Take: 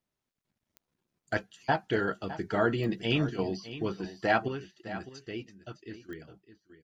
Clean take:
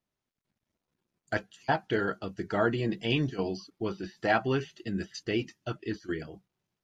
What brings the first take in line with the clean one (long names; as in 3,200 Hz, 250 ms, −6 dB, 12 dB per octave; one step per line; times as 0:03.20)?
click removal
echo removal 609 ms −14 dB
level 0 dB, from 0:04.48 +9 dB